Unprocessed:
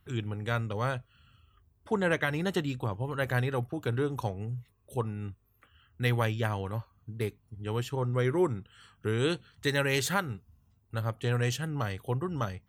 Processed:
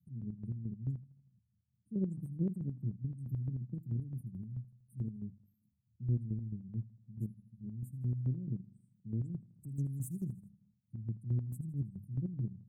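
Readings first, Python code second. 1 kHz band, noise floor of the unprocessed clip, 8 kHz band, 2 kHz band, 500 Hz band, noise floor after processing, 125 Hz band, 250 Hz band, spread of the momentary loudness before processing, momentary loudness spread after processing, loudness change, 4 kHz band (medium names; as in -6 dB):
under -40 dB, -68 dBFS, under -15 dB, under -40 dB, -22.0 dB, -78 dBFS, -4.5 dB, -6.0 dB, 11 LU, 9 LU, -8.0 dB, under -40 dB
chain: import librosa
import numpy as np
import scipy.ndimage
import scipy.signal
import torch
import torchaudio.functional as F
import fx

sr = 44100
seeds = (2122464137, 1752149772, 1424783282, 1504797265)

p1 = scipy.signal.sosfilt(scipy.signal.cheby1(4, 1.0, [210.0, 9000.0], 'bandstop', fs=sr, output='sos'), x)
p2 = fx.hum_notches(p1, sr, base_hz=50, count=5)
p3 = fx.spec_gate(p2, sr, threshold_db=-30, keep='strong')
p4 = scipy.signal.sosfilt(scipy.signal.butter(4, 130.0, 'highpass', fs=sr, output='sos'), p3)
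p5 = fx.high_shelf(p4, sr, hz=3100.0, db=-10.0)
p6 = fx.chopper(p5, sr, hz=4.6, depth_pct=60, duty_pct=40)
p7 = p6 + fx.echo_feedback(p6, sr, ms=80, feedback_pct=59, wet_db=-19, dry=0)
p8 = fx.doppler_dist(p7, sr, depth_ms=0.72)
y = p8 * 10.0 ** (4.0 / 20.0)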